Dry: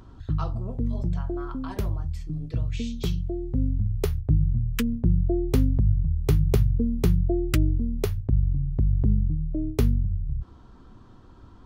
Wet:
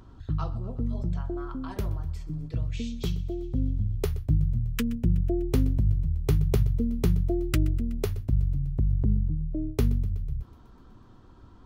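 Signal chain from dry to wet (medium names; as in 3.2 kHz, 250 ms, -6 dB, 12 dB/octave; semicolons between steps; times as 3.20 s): thinning echo 124 ms, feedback 70%, high-pass 160 Hz, level -19.5 dB; trim -2.5 dB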